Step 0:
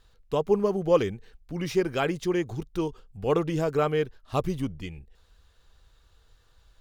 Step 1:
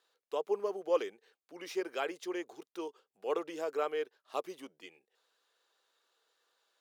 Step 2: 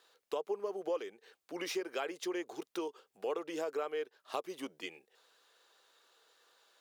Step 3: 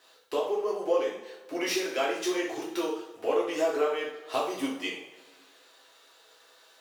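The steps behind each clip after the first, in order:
high-pass 370 Hz 24 dB/octave; trim -8 dB
compression 4:1, threshold -44 dBFS, peak gain reduction 17 dB; trim +8.5 dB
two-slope reverb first 0.52 s, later 1.9 s, DRR -6.5 dB; trim +3 dB

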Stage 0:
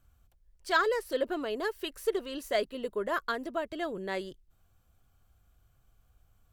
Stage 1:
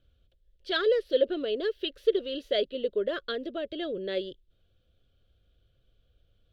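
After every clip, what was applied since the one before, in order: FFT filter 210 Hz 0 dB, 550 Hz +9 dB, 890 Hz -18 dB, 1.5 kHz -2 dB, 2.2 kHz -3 dB, 3.4 kHz +11 dB, 7.7 kHz -19 dB; trim -1.5 dB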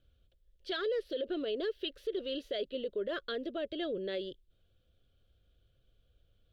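peak limiter -25 dBFS, peak gain reduction 12 dB; trim -2.5 dB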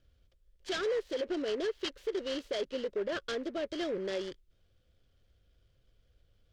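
delay time shaken by noise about 1.3 kHz, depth 0.034 ms; trim +1.5 dB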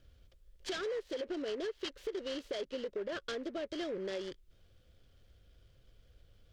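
compression 2.5:1, threshold -46 dBFS, peak gain reduction 11.5 dB; trim +5.5 dB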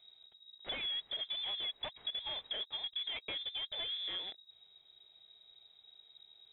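frequency inversion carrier 3.8 kHz; trim -1.5 dB

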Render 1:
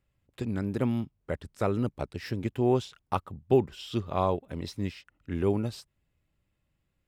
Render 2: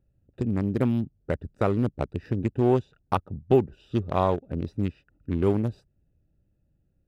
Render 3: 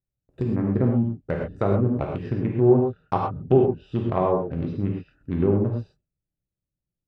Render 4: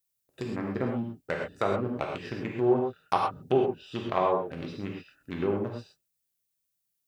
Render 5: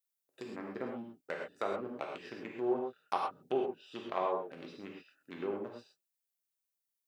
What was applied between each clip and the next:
local Wiener filter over 41 samples; in parallel at +2 dB: compression, threshold -33 dBFS, peak gain reduction 15.5 dB; on the sum: trim +1 dB
gate with hold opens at -52 dBFS; low-pass that closes with the level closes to 790 Hz, closed at -19 dBFS; gated-style reverb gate 150 ms flat, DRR -1 dB
tilt EQ +4.5 dB/octave
high-pass 270 Hz 12 dB/octave; trim -7.5 dB

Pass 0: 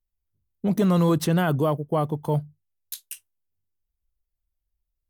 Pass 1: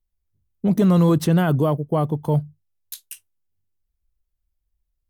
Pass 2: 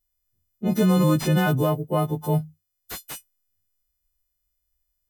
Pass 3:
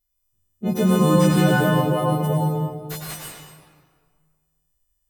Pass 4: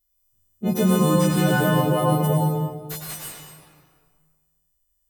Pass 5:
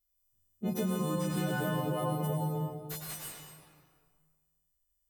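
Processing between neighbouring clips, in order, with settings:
bass shelf 410 Hz +5.5 dB
partials quantised in pitch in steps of 3 st; slew-rate limiter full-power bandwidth 210 Hz; trim -2 dB
reverberation RT60 1.7 s, pre-delay 86 ms, DRR -2.5 dB
treble shelf 6.3 kHz +6 dB; tremolo triangle 0.57 Hz, depth 45%; trim +1.5 dB
compression, threshold -21 dBFS, peak gain reduction 7.5 dB; trim -7.5 dB

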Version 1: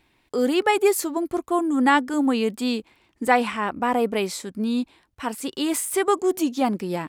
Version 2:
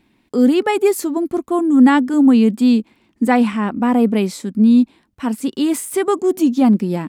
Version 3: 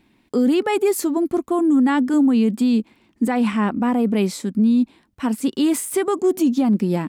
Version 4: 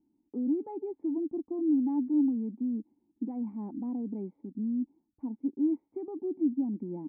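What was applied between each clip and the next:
peaking EQ 220 Hz +14 dB 1.1 oct
peak limiter -11 dBFS, peak gain reduction 9 dB
cascade formant filter u; trim -8 dB

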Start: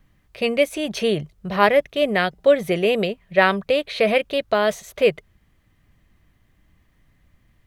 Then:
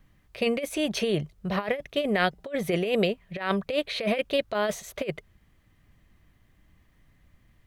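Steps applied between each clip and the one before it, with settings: compressor with a negative ratio -20 dBFS, ratio -0.5; trim -4.5 dB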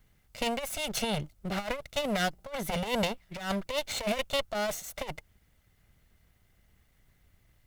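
comb filter that takes the minimum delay 1.4 ms; treble shelf 5.2 kHz +9 dB; trim -3.5 dB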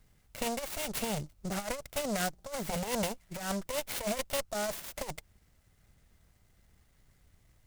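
in parallel at 0 dB: compression, threshold -37 dBFS, peak gain reduction 12.5 dB; on the sum: delay time shaken by noise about 6 kHz, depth 0.068 ms; trim -5.5 dB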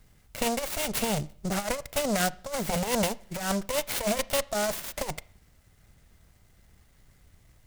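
reverberation RT60 0.50 s, pre-delay 26 ms, DRR 19.5 dB; trim +6 dB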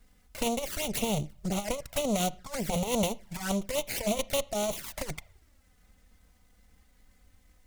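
touch-sensitive flanger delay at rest 4.4 ms, full sweep at -26 dBFS

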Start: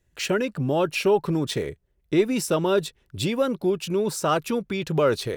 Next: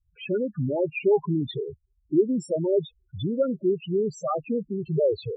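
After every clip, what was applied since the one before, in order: loudest bins only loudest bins 4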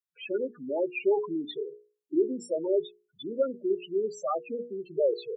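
high-pass 290 Hz 24 dB/octave; hum notches 60/120/180/240/300/360/420/480 Hz; trim -2.5 dB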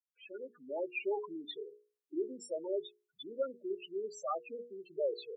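fade-in on the opening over 0.72 s; high-pass 790 Hz 6 dB/octave; trim -3.5 dB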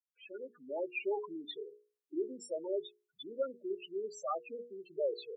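no audible change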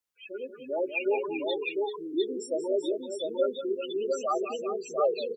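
multi-tap echo 182/387/703 ms -10.5/-9.5/-3 dB; trim +7.5 dB

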